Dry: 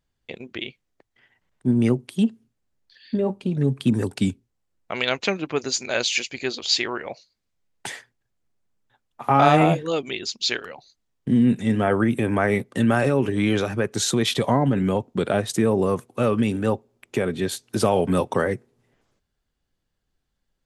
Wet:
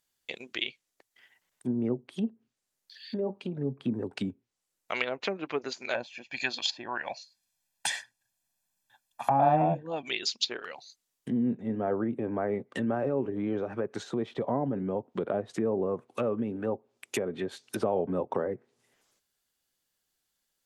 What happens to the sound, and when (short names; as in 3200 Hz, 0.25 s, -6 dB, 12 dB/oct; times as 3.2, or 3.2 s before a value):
5.94–10.08 comb 1.2 ms, depth 71%
whole clip: treble ducked by the level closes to 630 Hz, closed at -19 dBFS; RIAA curve recording; gain -3 dB